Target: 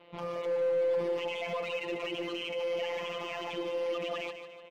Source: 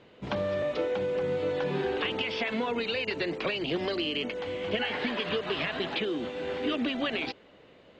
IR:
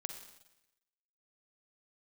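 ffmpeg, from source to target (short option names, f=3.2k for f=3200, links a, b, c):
-filter_complex "[0:a]acrossover=split=470 3500:gain=0.251 1 0.0794[a][b][c];[a][b][c]amix=inputs=3:normalize=0,afftfilt=real='hypot(re,im)*cos(PI*b)':imag='0':win_size=1024:overlap=0.75,equalizer=f=1.6k:t=o:w=0.41:g=-11,alimiter=level_in=6dB:limit=-24dB:level=0:latency=1:release=29,volume=-6dB,atempo=1.7,volume=35dB,asoftclip=hard,volume=-35dB,acrossover=split=3900[d][e];[e]acompressor=threshold=-58dB:ratio=4:attack=1:release=60[f];[d][f]amix=inputs=2:normalize=0,asplit=2[g][h];[h]aecho=0:1:149|298|447|596|745:0.335|0.151|0.0678|0.0305|0.0137[i];[g][i]amix=inputs=2:normalize=0,volume=7dB"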